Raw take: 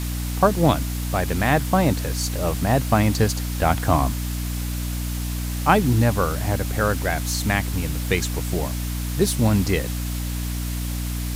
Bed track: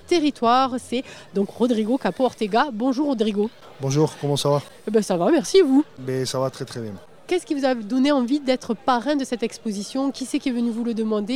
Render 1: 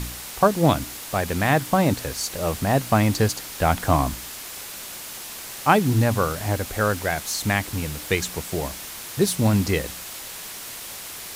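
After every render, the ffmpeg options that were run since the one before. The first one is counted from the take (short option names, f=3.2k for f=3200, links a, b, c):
-af "bandreject=f=60:t=h:w=4,bandreject=f=120:t=h:w=4,bandreject=f=180:t=h:w=4,bandreject=f=240:t=h:w=4,bandreject=f=300:t=h:w=4"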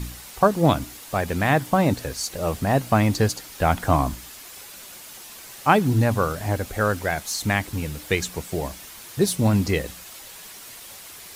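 -af "afftdn=nr=7:nf=-37"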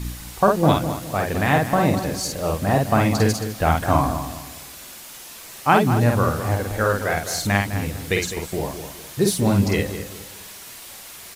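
-filter_complex "[0:a]asplit=2[a][b];[b]adelay=50,volume=-3dB[c];[a][c]amix=inputs=2:normalize=0,asplit=2[d][e];[e]adelay=206,lowpass=f=2k:p=1,volume=-9.5dB,asplit=2[f][g];[g]adelay=206,lowpass=f=2k:p=1,volume=0.34,asplit=2[h][i];[i]adelay=206,lowpass=f=2k:p=1,volume=0.34,asplit=2[j][k];[k]adelay=206,lowpass=f=2k:p=1,volume=0.34[l];[d][f][h][j][l]amix=inputs=5:normalize=0"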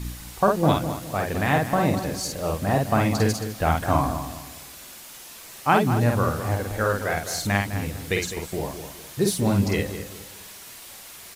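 -af "volume=-3dB"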